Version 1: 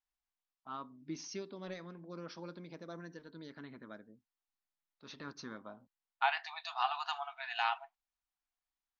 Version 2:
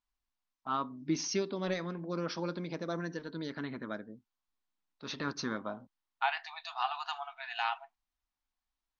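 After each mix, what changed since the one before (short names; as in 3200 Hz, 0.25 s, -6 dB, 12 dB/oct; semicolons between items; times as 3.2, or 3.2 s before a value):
first voice +10.5 dB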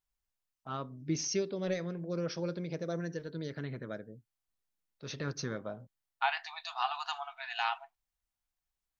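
first voice: add graphic EQ 125/250/500/1000/4000 Hz +10/-8/+6/-11/-6 dB; master: remove air absorption 74 m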